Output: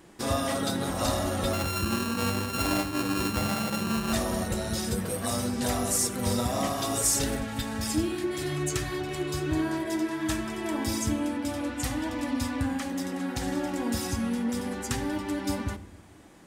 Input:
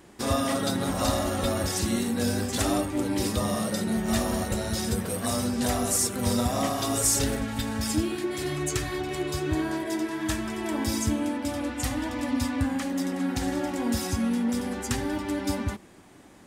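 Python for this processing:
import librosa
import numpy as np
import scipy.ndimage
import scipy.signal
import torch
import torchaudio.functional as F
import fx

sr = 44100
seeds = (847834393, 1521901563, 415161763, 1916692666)

y = fx.sample_sort(x, sr, block=32, at=(1.53, 4.13))
y = fx.room_shoebox(y, sr, seeds[0], volume_m3=2300.0, walls='furnished', distance_m=0.67)
y = y * 10.0 ** (-1.5 / 20.0)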